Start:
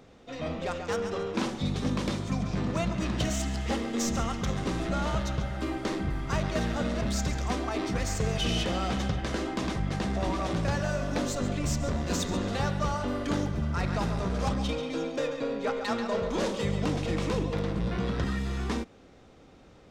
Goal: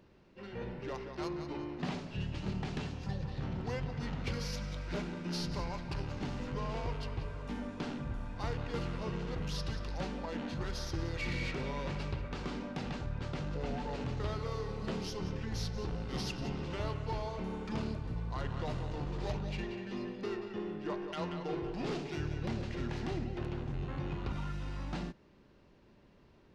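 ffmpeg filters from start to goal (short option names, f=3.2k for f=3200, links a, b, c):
-af "asetrate=33075,aresample=44100,volume=-8dB"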